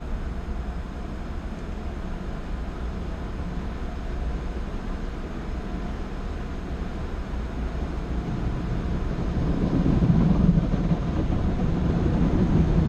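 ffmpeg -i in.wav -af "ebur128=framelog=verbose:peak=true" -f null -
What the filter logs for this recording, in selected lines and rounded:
Integrated loudness:
  I:         -27.6 LUFS
  Threshold: -37.6 LUFS
Loudness range:
  LRA:        10.5 LU
  Threshold: -48.1 LUFS
  LRA low:   -33.7 LUFS
  LRA high:  -23.3 LUFS
True peak:
  Peak:       -6.7 dBFS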